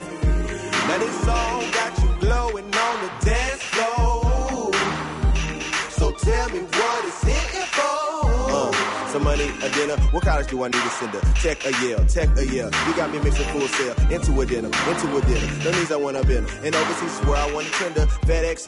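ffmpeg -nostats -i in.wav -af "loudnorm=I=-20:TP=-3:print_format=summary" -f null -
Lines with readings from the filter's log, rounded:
Input Integrated:    -22.1 LUFS
Input True Peak:      -8.6 dBTP
Input LRA:             0.9 LU
Input Threshold:     -32.1 LUFS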